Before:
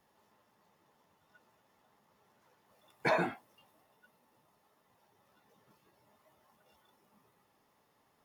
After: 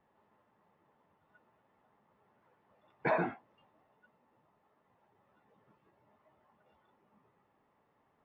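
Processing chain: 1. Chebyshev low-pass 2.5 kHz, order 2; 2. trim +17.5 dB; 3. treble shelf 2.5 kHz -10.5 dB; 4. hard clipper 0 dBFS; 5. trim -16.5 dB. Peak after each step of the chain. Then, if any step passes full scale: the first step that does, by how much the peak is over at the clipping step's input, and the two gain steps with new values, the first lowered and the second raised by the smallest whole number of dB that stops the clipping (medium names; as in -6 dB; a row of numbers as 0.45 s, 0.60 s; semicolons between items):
-18.5 dBFS, -1.0 dBFS, -2.0 dBFS, -2.0 dBFS, -18.5 dBFS; nothing clips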